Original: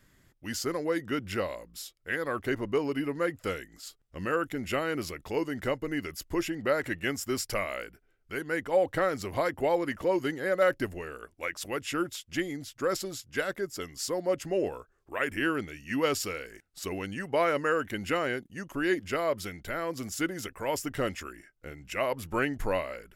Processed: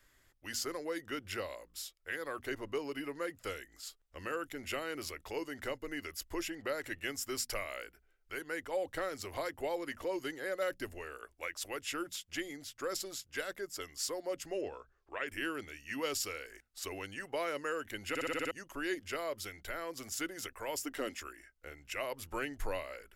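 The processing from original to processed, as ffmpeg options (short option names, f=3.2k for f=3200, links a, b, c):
-filter_complex "[0:a]asettb=1/sr,asplit=3[a][b][c];[a]atrim=end=14.614[d];[b]atrim=start=14.61:end=15.28,asetpts=PTS-STARTPTS,afade=t=in:d=0.004:c=qsin,afade=t=out:st=0.666:d=0.004:c=qsin,lowpass=f=5.9k:w=0.5412,lowpass=f=5.9k:w=1.3066[e];[c]atrim=start=15.276[f];[d][e]acrossfade=d=0.004:c1=hsin:c2=qsin[g];[g][f]acrossfade=d=0.004:c1=qsin:c2=hsin,asettb=1/sr,asplit=3[h][i][j];[h]atrim=end=20.774[k];[i]atrim=start=20.77:end=21.22,asetpts=PTS-STARTPTS,afade=t=in:d=0.004:c=qsin,afade=t=out:st=0.446:d=0.004:c=qsin,lowshelf=f=190:t=q:w=3:g=-7.5[l];[j]atrim=start=21.216[m];[k][l]acrossfade=d=0.004:c1=hsin:c2=qsin[n];[n][m]acrossfade=d=0.004:c1=qsin:c2=hsin,asplit=8[o][p][q][r][s][t][u][v];[o]atrim=end=18.152[w];[p]atrim=start=18.088:end=18.152[x];[q]atrim=start=18.088:end=18.152[y];[r]atrim=start=18.088:end=18.152[z];[s]atrim=start=18.088:end=18.152[aa];[t]atrim=start=18.088:end=18.152[ab];[u]atrim=start=18.088:end=18.152[ac];[v]atrim=start=18.508[ad];[w][x]acrossfade=d=0.004:c1=hsin:c2=hsin[ae];[ae][y]acrossfade=d=0.004:c1=hsin:c2=hsin[af];[af][z]acrossfade=d=0.004:c1=hsin:c2=hsin[ag];[ag][aa]acrossfade=d=0.004:c1=hsin:c2=hsin[ah];[ah][ab]acrossfade=d=0.004:c1=hsin:c2=hsin[ai];[ai][ac]acrossfade=d=0.004:c1=hsin:c2=hsin[aj];[aj][ad]acrossfade=d=0.004:c1=hsin:c2=hsin,acrossover=split=420|3000[ak][al][am];[al]acompressor=threshold=-40dB:ratio=2[an];[ak][an][am]amix=inputs=3:normalize=0,equalizer=f=170:t=o:w=1.7:g=-15,bandreject=f=60:t=h:w=6,bandreject=f=120:t=h:w=6,bandreject=f=180:t=h:w=6,bandreject=f=240:t=h:w=6,volume=-2dB"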